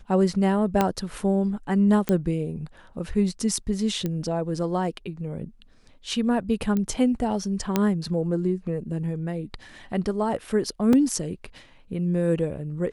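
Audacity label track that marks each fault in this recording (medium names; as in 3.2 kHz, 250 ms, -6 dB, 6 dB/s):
0.810000	0.810000	pop -7 dBFS
2.090000	2.090000	pop -10 dBFS
4.060000	4.060000	pop -15 dBFS
6.770000	6.770000	pop -15 dBFS
7.760000	7.760000	pop -7 dBFS
10.930000	10.930000	dropout 2.4 ms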